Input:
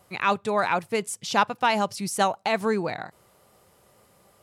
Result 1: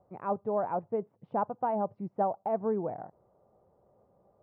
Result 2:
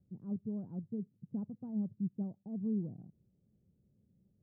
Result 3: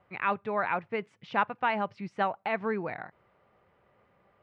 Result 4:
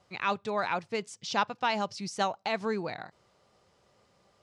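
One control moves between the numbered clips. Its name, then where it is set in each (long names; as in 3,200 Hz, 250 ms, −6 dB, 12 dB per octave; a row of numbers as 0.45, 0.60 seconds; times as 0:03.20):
transistor ladder low-pass, frequency: 920, 270, 2,700, 6,900 Hertz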